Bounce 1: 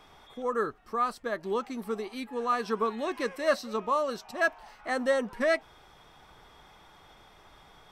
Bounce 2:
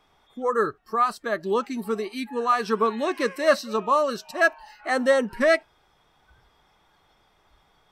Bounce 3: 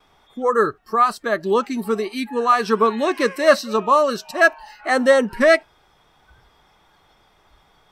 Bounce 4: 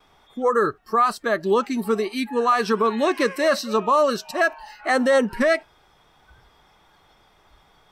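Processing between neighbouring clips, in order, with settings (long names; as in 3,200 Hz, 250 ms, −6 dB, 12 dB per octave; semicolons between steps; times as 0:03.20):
noise reduction from a noise print of the clip's start 14 dB; level +6.5 dB
noise gate with hold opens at −58 dBFS; level +5.5 dB
brickwall limiter −10 dBFS, peak gain reduction 8.5 dB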